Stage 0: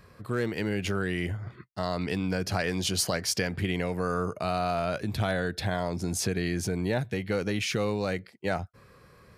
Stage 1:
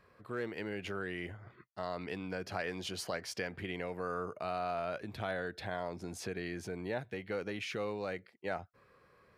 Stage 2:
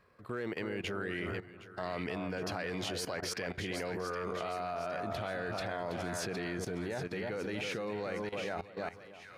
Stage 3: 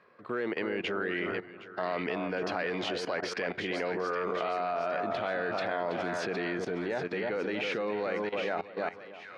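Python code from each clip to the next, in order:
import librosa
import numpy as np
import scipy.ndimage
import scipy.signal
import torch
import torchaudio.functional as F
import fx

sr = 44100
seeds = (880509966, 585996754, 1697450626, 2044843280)

y1 = fx.bass_treble(x, sr, bass_db=-9, treble_db=-10)
y1 = y1 * librosa.db_to_amplitude(-7.0)
y2 = fx.echo_split(y1, sr, split_hz=1400.0, low_ms=315, high_ms=764, feedback_pct=52, wet_db=-7.0)
y2 = fx.level_steps(y2, sr, step_db=15)
y2 = y2 * librosa.db_to_amplitude(8.0)
y3 = fx.bandpass_edges(y2, sr, low_hz=230.0, high_hz=3500.0)
y3 = y3 * librosa.db_to_amplitude(6.0)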